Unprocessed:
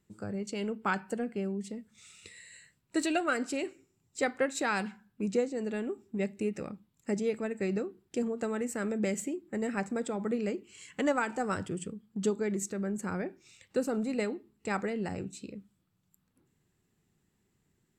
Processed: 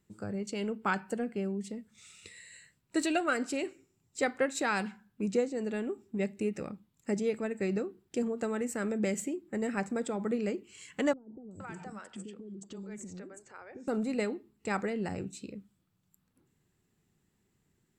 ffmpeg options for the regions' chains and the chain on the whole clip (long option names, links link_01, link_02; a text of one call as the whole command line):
ffmpeg -i in.wav -filter_complex "[0:a]asettb=1/sr,asplit=3[link_01][link_02][link_03];[link_01]atrim=end=11.134[link_04];[link_02]atrim=start=11.13:end=13.88,asetpts=PTS-STARTPTS,afade=type=in:duration=0.004:curve=qsin,afade=type=out:start_time=2.746:duration=0.004:curve=qsin,lowpass=frequency=9000:width=0.5412,lowpass=frequency=9000:width=1.3066,acompressor=threshold=-40dB:ratio=6:attack=3.2:release=140:knee=1:detection=peak,acrossover=split=440|5900[link_05][link_06][link_07];[link_07]adelay=380[link_08];[link_06]adelay=470[link_09];[link_05][link_09][link_08]amix=inputs=3:normalize=0,atrim=end_sample=121275[link_10];[link_03]atrim=start=13.876[link_11];[link_04][link_10]acrossfade=duration=0.004:curve1=hsin:curve2=qsin[link_12];[link_12][link_11]acrossfade=duration=0.004:curve1=qsin:curve2=hsin" out.wav